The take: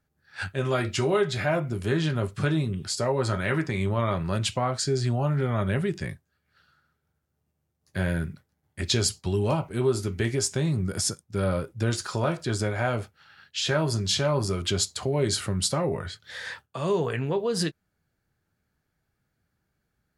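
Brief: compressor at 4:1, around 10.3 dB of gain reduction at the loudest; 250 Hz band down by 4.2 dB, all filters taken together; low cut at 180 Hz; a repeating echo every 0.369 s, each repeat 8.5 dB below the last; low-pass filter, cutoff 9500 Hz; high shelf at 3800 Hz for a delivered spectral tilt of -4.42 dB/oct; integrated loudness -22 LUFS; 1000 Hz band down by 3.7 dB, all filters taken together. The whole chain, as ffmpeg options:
-af "highpass=180,lowpass=9.5k,equalizer=f=250:t=o:g=-3.5,equalizer=f=1k:t=o:g=-4,highshelf=f=3.8k:g=-8,acompressor=threshold=-34dB:ratio=4,aecho=1:1:369|738|1107|1476:0.376|0.143|0.0543|0.0206,volume=15.5dB"

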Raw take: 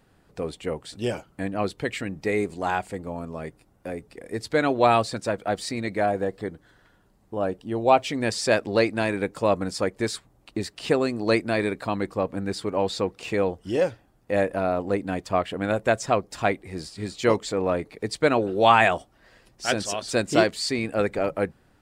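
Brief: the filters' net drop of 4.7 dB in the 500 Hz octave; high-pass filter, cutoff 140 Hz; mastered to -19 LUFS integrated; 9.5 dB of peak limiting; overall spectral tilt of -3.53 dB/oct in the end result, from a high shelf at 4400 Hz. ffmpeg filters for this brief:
-af "highpass=140,equalizer=f=500:t=o:g=-6,highshelf=f=4.4k:g=4.5,volume=10.5dB,alimiter=limit=-2.5dB:level=0:latency=1"

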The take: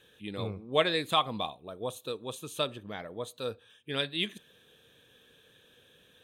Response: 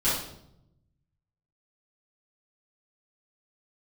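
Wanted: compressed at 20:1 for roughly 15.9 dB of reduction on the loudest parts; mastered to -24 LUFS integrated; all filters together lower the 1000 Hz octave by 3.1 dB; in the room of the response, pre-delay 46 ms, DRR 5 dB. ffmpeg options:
-filter_complex "[0:a]equalizer=f=1k:t=o:g=-4,acompressor=threshold=-36dB:ratio=20,asplit=2[a][b];[1:a]atrim=start_sample=2205,adelay=46[c];[b][c]afir=irnorm=-1:irlink=0,volume=-17dB[d];[a][d]amix=inputs=2:normalize=0,volume=17dB"

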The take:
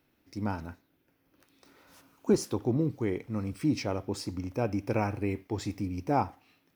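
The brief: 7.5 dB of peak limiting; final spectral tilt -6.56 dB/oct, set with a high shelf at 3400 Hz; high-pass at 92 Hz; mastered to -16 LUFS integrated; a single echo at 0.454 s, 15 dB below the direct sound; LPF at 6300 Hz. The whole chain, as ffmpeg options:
-af "highpass=92,lowpass=6.3k,highshelf=f=3.4k:g=-7.5,alimiter=limit=-21dB:level=0:latency=1,aecho=1:1:454:0.178,volume=18.5dB"

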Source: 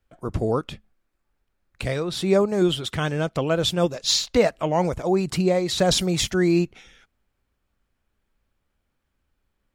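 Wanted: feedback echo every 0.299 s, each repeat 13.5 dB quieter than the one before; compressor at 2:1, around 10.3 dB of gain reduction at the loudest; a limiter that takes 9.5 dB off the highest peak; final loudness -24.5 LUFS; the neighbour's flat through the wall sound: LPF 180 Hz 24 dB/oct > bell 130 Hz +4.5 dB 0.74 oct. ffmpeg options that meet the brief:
-af "acompressor=threshold=-33dB:ratio=2,alimiter=level_in=1dB:limit=-24dB:level=0:latency=1,volume=-1dB,lowpass=f=180:w=0.5412,lowpass=f=180:w=1.3066,equalizer=f=130:t=o:w=0.74:g=4.5,aecho=1:1:299|598:0.211|0.0444,volume=15.5dB"

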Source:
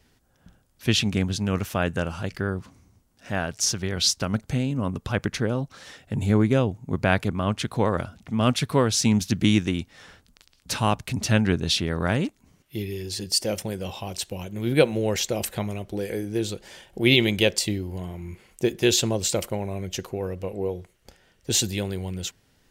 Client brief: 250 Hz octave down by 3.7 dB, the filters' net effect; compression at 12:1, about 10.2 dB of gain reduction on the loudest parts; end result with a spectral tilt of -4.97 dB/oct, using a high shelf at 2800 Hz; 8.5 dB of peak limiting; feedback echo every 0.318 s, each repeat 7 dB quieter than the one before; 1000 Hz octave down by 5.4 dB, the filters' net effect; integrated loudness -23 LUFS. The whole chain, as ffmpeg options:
-af "equalizer=f=250:t=o:g=-4.5,equalizer=f=1k:t=o:g=-6,highshelf=f=2.8k:g=-7,acompressor=threshold=-26dB:ratio=12,alimiter=level_in=0.5dB:limit=-24dB:level=0:latency=1,volume=-0.5dB,aecho=1:1:318|636|954|1272|1590:0.447|0.201|0.0905|0.0407|0.0183,volume=11.5dB"

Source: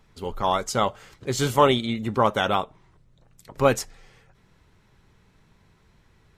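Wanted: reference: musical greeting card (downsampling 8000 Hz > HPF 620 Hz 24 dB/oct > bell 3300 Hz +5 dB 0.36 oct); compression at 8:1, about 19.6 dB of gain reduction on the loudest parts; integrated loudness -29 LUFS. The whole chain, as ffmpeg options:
-af "acompressor=threshold=-33dB:ratio=8,aresample=8000,aresample=44100,highpass=f=620:w=0.5412,highpass=f=620:w=1.3066,equalizer=f=3.3k:t=o:w=0.36:g=5,volume=12dB"

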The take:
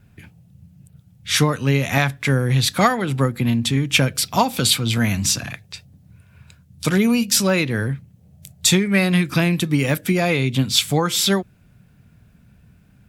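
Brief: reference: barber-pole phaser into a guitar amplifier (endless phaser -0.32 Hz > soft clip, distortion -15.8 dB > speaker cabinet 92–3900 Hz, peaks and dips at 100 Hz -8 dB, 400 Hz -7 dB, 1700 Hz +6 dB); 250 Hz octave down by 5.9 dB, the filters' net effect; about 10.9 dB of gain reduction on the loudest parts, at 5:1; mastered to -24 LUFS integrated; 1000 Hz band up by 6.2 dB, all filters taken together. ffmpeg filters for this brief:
-filter_complex "[0:a]equalizer=f=250:t=o:g=-7.5,equalizer=f=1k:t=o:g=8,acompressor=threshold=-19dB:ratio=5,asplit=2[a][b];[b]afreqshift=-0.32[c];[a][c]amix=inputs=2:normalize=1,asoftclip=threshold=-20dB,highpass=92,equalizer=f=100:t=q:w=4:g=-8,equalizer=f=400:t=q:w=4:g=-7,equalizer=f=1.7k:t=q:w=4:g=6,lowpass=f=3.9k:w=0.5412,lowpass=f=3.9k:w=1.3066,volume=6dB"

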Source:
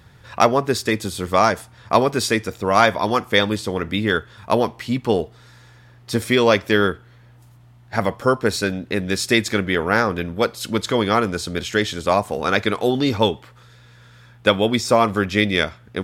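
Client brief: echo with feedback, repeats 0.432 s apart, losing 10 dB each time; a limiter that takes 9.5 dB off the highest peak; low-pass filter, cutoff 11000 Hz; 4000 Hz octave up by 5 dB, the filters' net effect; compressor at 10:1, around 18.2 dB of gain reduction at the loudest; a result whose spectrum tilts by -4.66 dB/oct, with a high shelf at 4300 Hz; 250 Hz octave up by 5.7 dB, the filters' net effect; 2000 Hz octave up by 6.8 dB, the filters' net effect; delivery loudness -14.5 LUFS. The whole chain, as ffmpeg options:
-af "lowpass=11k,equalizer=f=250:t=o:g=7,equalizer=f=2k:t=o:g=8,equalizer=f=4k:t=o:g=6,highshelf=f=4.3k:g=-5,acompressor=threshold=-25dB:ratio=10,alimiter=limit=-19.5dB:level=0:latency=1,aecho=1:1:432|864|1296|1728:0.316|0.101|0.0324|0.0104,volume=17.5dB"

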